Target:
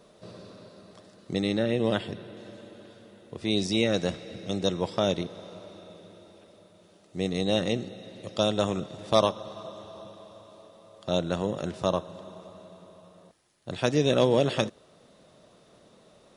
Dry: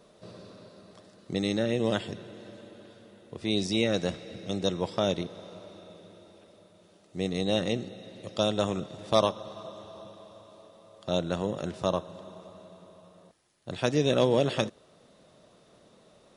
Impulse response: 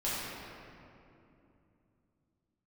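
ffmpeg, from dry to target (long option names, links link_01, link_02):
-filter_complex "[0:a]asettb=1/sr,asplit=3[link_01][link_02][link_03];[link_01]atrim=end=1.404[link_04];[link_02]atrim=start=1.4:end=2.37,asetpts=PTS-STARTPTS,afade=type=in:duration=0.004:curve=qsin,afade=type=out:start_time=0.966:duration=0.004:curve=qsin,equalizer=frequency=6700:width_type=o:width=0.57:gain=-10[link_05];[link_03]atrim=start=2.366[link_06];[link_04][link_05]acrossfade=duration=0.004:curve1=hsin:curve2=qsin[link_07];[link_07][link_06]acrossfade=duration=0.004:curve1=qsin:curve2=hsin,volume=1.5dB"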